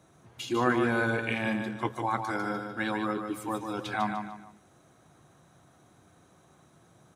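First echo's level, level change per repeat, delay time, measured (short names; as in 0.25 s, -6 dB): -6.0 dB, -9.0 dB, 0.149 s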